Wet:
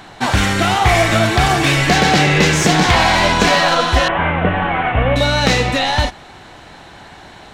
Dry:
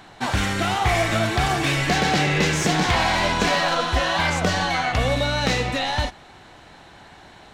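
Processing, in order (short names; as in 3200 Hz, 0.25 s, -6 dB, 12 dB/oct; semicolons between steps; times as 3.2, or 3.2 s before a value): 4.08–5.16 CVSD 16 kbps; gain +7.5 dB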